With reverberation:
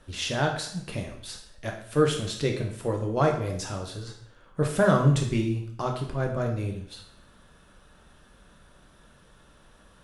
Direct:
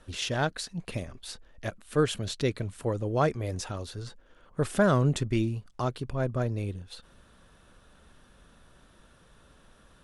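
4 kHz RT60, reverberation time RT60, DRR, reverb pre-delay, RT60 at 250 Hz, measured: 0.60 s, 0.65 s, 1.5 dB, 5 ms, 0.65 s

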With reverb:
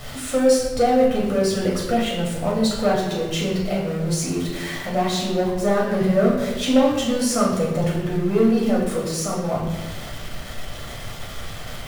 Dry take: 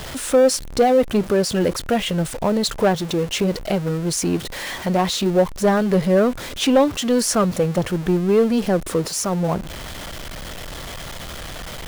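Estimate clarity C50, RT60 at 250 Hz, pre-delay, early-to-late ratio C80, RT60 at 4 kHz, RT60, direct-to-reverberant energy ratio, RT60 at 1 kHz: 2.5 dB, 1.4 s, 8 ms, 5.5 dB, 0.85 s, 1.1 s, −4.5 dB, 1.0 s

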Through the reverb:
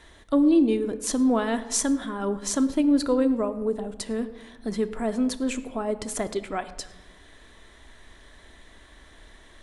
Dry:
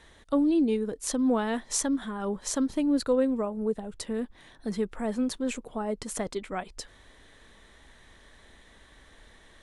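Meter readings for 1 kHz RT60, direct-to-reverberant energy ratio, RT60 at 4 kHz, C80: 0.95 s, 9.0 dB, 0.65 s, 15.0 dB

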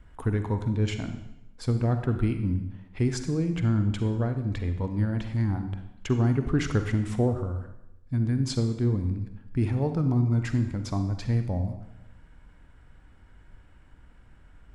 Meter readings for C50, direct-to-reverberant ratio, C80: 8.5 dB, 7.5 dB, 10.5 dB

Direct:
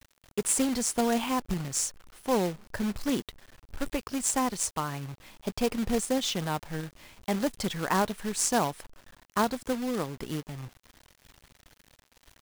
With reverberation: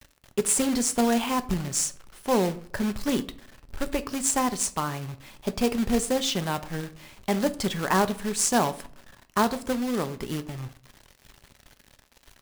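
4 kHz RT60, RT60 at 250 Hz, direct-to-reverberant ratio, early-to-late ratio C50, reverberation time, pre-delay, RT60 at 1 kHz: 0.35 s, 0.60 s, 10.5 dB, 17.0 dB, 0.50 s, 4 ms, 0.45 s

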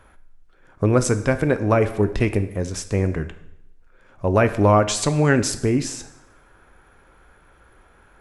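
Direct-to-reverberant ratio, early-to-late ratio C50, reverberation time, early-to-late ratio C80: 9.5 dB, 13.5 dB, 0.80 s, 15.5 dB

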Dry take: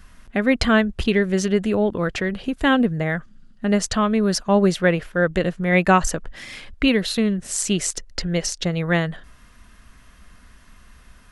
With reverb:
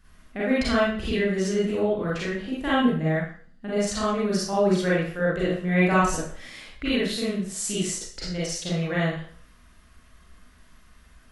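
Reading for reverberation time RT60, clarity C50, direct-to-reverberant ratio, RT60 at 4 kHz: 0.50 s, −1.5 dB, −7.5 dB, 0.45 s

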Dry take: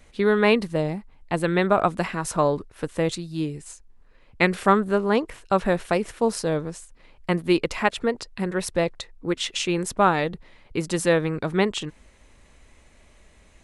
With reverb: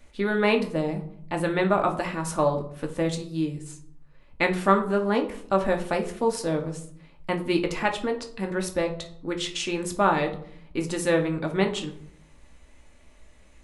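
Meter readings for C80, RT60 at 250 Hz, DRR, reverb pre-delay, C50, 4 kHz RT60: 16.0 dB, 0.90 s, 3.0 dB, 3 ms, 11.0 dB, 0.40 s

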